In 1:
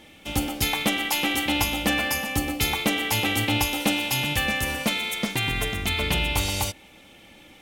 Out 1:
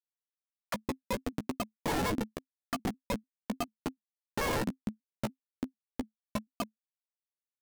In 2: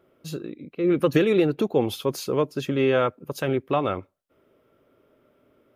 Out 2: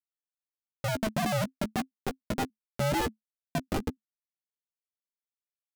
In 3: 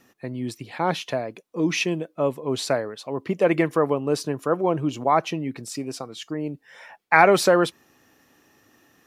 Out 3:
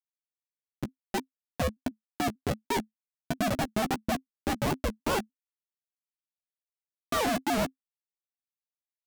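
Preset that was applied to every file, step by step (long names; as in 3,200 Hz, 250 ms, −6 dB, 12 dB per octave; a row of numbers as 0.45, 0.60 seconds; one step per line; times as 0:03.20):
three sine waves on the formant tracks
low-pass filter 1,800 Hz 24 dB per octave
low-shelf EQ 190 Hz −10.5 dB
soft clipping −10 dBFS
background noise violet −61 dBFS
comparator with hysteresis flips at −21.5 dBFS
ring modulation 240 Hz
double-tracking delay 14 ms −8.5 dB
pitch modulation by a square or saw wave square 3.4 Hz, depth 160 cents
level +2.5 dB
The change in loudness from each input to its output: −13.0, −8.5, −8.0 LU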